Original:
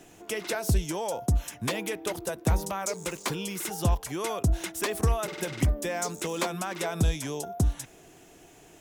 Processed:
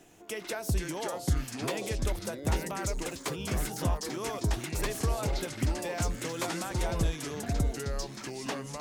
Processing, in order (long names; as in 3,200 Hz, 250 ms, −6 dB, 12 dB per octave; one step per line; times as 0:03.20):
delay with pitch and tempo change per echo 405 ms, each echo −4 semitones, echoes 2
level −5 dB